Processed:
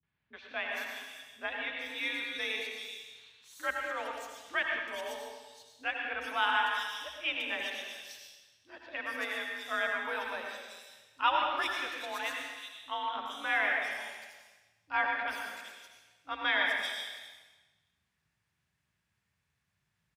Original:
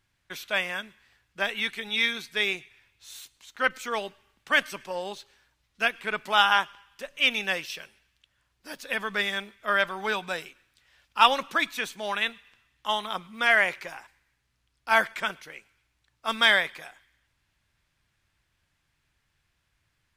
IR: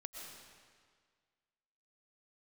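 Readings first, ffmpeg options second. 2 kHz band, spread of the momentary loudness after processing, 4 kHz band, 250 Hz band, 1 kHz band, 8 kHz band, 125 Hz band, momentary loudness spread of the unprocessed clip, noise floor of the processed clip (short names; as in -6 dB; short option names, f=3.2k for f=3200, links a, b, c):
-6.5 dB, 19 LU, -8.5 dB, -8.5 dB, -6.0 dB, -6.5 dB, under -15 dB, 21 LU, -81 dBFS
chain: -filter_complex "[0:a]acrossover=split=260|3600[a][b][c];[b]adelay=30[d];[c]adelay=410[e];[a][d][e]amix=inputs=3:normalize=0,afreqshift=52[f];[1:a]atrim=start_sample=2205,asetrate=61740,aresample=44100[g];[f][g]afir=irnorm=-1:irlink=0"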